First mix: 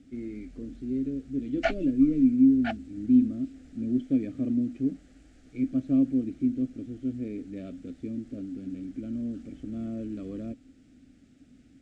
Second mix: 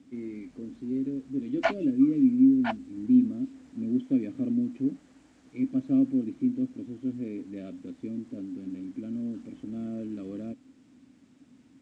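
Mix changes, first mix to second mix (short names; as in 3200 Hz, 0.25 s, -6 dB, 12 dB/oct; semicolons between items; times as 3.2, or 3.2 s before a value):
first voice: add HPF 130 Hz 12 dB/oct; second voice: remove Butterworth band-stop 990 Hz, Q 2.1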